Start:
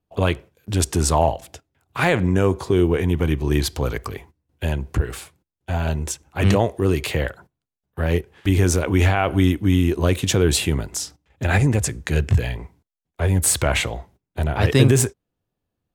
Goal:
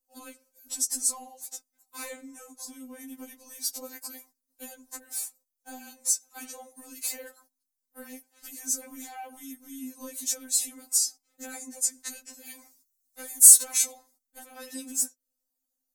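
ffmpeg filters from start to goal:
-filter_complex "[0:a]acompressor=threshold=-26dB:ratio=6,aexciter=amount=10.5:drive=4.9:freq=4.6k,asettb=1/sr,asplit=3[a][b][c];[a]atrim=end=12.474[d];[b]atrim=start=12.47:end=13.92,asetpts=PTS-STARTPTS,afade=t=in:d=0.004:c=qsin,afade=t=out:st=1.446:d=0.004:c=qsin,highshelf=f=2.5k:g=9.5[e];[c]atrim=start=13.916[f];[d][e]acrossfade=d=0.004:c1=hsin:c2=qsin[g];[g][f]acrossfade=d=0.004:c1=qsin:c2=hsin,afftfilt=real='re*3.46*eq(mod(b,12),0)':imag='im*3.46*eq(mod(b,12),0)':win_size=2048:overlap=0.75,volume=-10dB"

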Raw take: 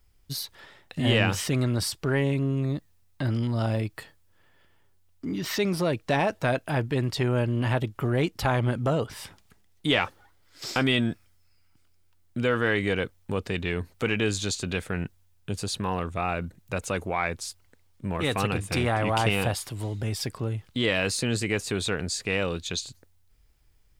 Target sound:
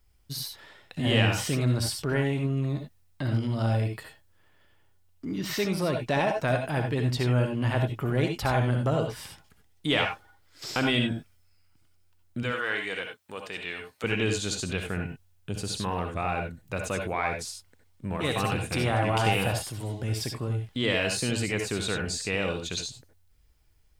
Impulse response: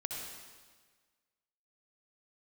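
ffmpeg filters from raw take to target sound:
-filter_complex "[0:a]asettb=1/sr,asplit=3[a][b][c];[a]atrim=end=12.434[d];[b]atrim=start=12.43:end=14.04,asetpts=PTS-STARTPTS,afade=t=in:d=0.004:c=qsin,afade=t=out:st=1.606:d=0.004:c=qsin,highpass=f=1k:p=1[e];[c]atrim=start=14.036[f];[d][e]acrossfade=d=0.004:c1=hsin:c2=qsin[g];[g][f]acrossfade=d=0.004:c1=qsin:c2=hsin[h];[1:a]atrim=start_sample=2205,atrim=end_sample=4410[i];[h][i]afir=irnorm=-1:irlink=0"

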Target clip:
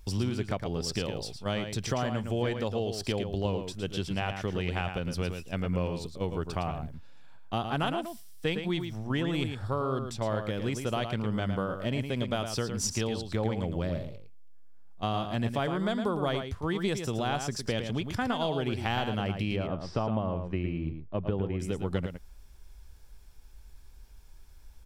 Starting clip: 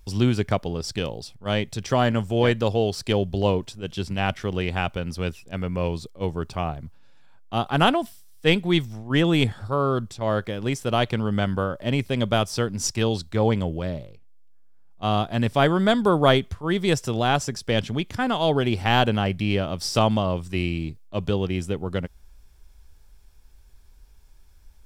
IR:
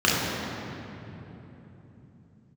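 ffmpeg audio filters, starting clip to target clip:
-filter_complex "[0:a]asettb=1/sr,asplit=3[a][b][c];[a]atrim=end=19.564[d];[b]atrim=start=19.56:end=21.6,asetpts=PTS-STARTPTS,afade=t=in:d=0.004:c=qsin,afade=t=out:st=2.036:d=0.004:c=qsin,lowpass=1.7k[e];[c]atrim=start=21.596[f];[d][e]acrossfade=d=0.004:c1=hsin:c2=qsin[g];[g][f]acrossfade=d=0.004:c1=qsin:c2=hsin,acompressor=threshold=-28dB:ratio=5,asplit=2[h][i];[i]adelay=110.8,volume=-7dB,highshelf=f=4k:g=-2.49[j];[h][j]amix=inputs=2:normalize=0"

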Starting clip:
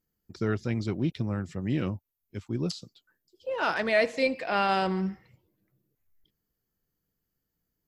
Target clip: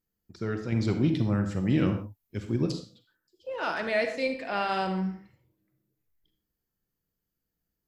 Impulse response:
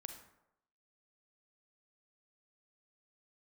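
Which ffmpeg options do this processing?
-filter_complex "[0:a]asettb=1/sr,asplit=3[a][b][c];[a]atrim=end=0.724[d];[b]atrim=start=0.72:end=2.66,asetpts=PTS-STARTPTS,afade=t=in:d=0.004:c=qsin,afade=t=out:st=1.936:d=0.004:c=qsin,acontrast=78[e];[c]atrim=start=2.656[f];[d][e]acrossfade=d=0.004:c1=hsin:c2=qsin[g];[g][f]acrossfade=d=0.004:c1=qsin:c2=hsin[h];[1:a]atrim=start_sample=2205,afade=t=out:st=0.22:d=0.01,atrim=end_sample=10143[i];[h][i]afir=irnorm=-1:irlink=0,volume=1.5dB"

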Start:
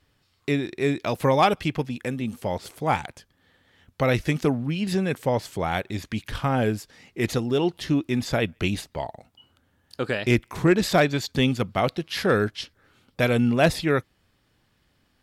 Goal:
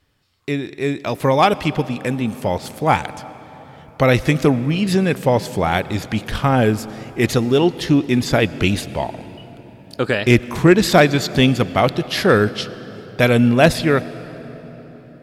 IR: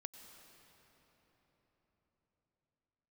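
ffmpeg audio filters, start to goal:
-filter_complex "[0:a]dynaudnorm=f=220:g=13:m=7dB,asplit=2[a][b];[1:a]atrim=start_sample=2205[c];[b][c]afir=irnorm=-1:irlink=0,volume=-1dB[d];[a][d]amix=inputs=2:normalize=0,volume=-2dB"

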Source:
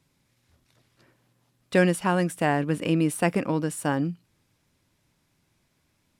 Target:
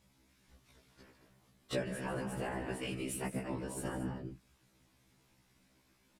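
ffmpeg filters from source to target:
-filter_complex "[0:a]asettb=1/sr,asplit=3[a][b][c];[a]atrim=end=2.624[d];[b]atrim=start=2.62:end=3.17,asetpts=PTS-STARTPTS,afade=t=in:d=0.004:c=qsin,afade=t=out:st=0.546:d=0.004:c=qsin,tiltshelf=f=970:g=-5[e];[c]atrim=start=3.166[f];[d][e]acrossfade=d=0.004:c1=hsin:c2=qsin[g];[g][f]acrossfade=d=0.004:c1=qsin:c2=hsin,asplit=2[h][i];[i]aecho=0:1:145.8|224.5:0.316|0.251[j];[h][j]amix=inputs=2:normalize=0,acompressor=threshold=-38dB:ratio=4,afftfilt=real='hypot(re,im)*cos(2*PI*random(0))':imag='hypot(re,im)*sin(2*PI*random(1))':win_size=512:overlap=0.75,afftfilt=real='re*1.73*eq(mod(b,3),0)':imag='im*1.73*eq(mod(b,3),0)':win_size=2048:overlap=0.75,volume=8dB"

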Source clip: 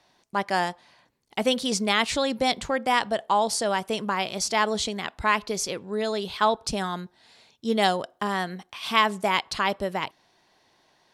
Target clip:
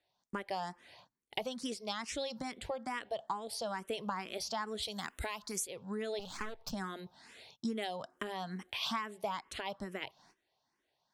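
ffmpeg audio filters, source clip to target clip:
-filter_complex "[0:a]asplit=3[a][b][c];[a]afade=t=out:st=4.82:d=0.02[d];[b]aemphasis=mode=production:type=75kf,afade=t=in:st=4.82:d=0.02,afade=t=out:st=5.66:d=0.02[e];[c]afade=t=in:st=5.66:d=0.02[f];[d][e][f]amix=inputs=3:normalize=0,agate=range=-18dB:threshold=-59dB:ratio=16:detection=peak,asettb=1/sr,asplit=3[g][h][i];[g]atrim=end=1.634[j];[h]atrim=start=1.63:end=2.4,asetpts=PTS-STARTPTS,afade=t=in:d=0.004:c=qsin,afade=t=out:st=0.766:d=0.004:c=qsin,equalizer=f=5.4k:t=o:w=0.45:g=11.5[k];[i]atrim=start=2.396[l];[j][k]acrossfade=d=0.004:c1=hsin:c2=qsin[m];[m][l]acrossfade=d=0.004:c1=qsin:c2=hsin,acompressor=threshold=-35dB:ratio=12,asettb=1/sr,asplit=3[n][o][p];[n]atrim=end=6.194[q];[o]atrim=start=6.19:end=6.72,asetpts=PTS-STARTPTS,afade=t=in:d=0.004:c=qsin,afade=t=out:st=0.526:d=0.004:c=qsin,aeval=exprs='max(val(0),0)':c=same[r];[p]atrim=start=6.716[s];[q][r]acrossfade=d=0.004:c1=hsin:c2=qsin[t];[t][s]acrossfade=d=0.004:c1=qsin:c2=hsin,asplit=2[u][v];[v]afreqshift=2.3[w];[u][w]amix=inputs=2:normalize=1,volume=3dB"

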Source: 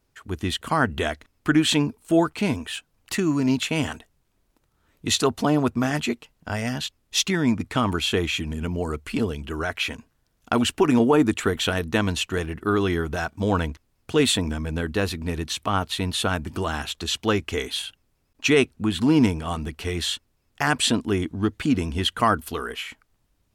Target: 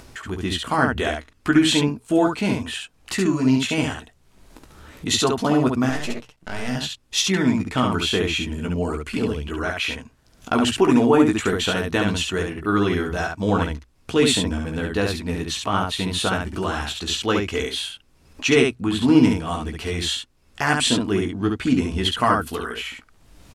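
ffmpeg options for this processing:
-filter_complex "[0:a]asettb=1/sr,asplit=3[a][b][c];[a]atrim=end=5.894[d];[b]atrim=start=5.89:end=6.69,asetpts=PTS-STARTPTS,afade=t=in:d=0.004:c=qsin,afade=t=out:st=0.796:d=0.004:c=qsin,aeval=exprs='max(val(0),0)':c=same[e];[c]atrim=start=6.686[f];[d][e]acrossfade=d=0.004:c1=hsin:c2=qsin[g];[g][f]acrossfade=d=0.004:c1=qsin:c2=hsin,lowpass=11k,bandreject=f=60:t=h:w=6,bandreject=f=120:t=h:w=6,asplit=2[h][i];[i]aecho=0:1:16|69:0.501|0.668[j];[h][j]amix=inputs=2:normalize=0,acompressor=mode=upward:threshold=-27dB:ratio=2.5"

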